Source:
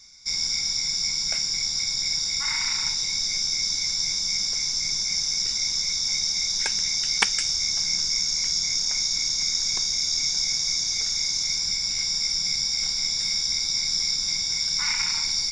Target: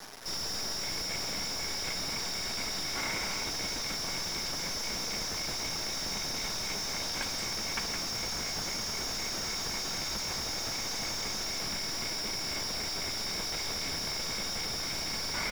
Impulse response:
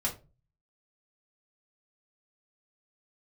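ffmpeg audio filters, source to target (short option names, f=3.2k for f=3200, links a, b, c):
-filter_complex "[0:a]asoftclip=type=tanh:threshold=-21dB,acrossover=split=3400[a][b];[a]adelay=550[c];[c][b]amix=inputs=2:normalize=0,acrusher=bits=5:dc=4:mix=0:aa=0.000001,asplit=2[d][e];[e]highpass=f=720:p=1,volume=29dB,asoftclip=type=tanh:threshold=-16dB[f];[d][f]amix=inputs=2:normalize=0,lowpass=f=1.8k:p=1,volume=-6dB,asplit=2[g][h];[1:a]atrim=start_sample=2205[i];[h][i]afir=irnorm=-1:irlink=0,volume=-17dB[j];[g][j]amix=inputs=2:normalize=0,volume=-5.5dB"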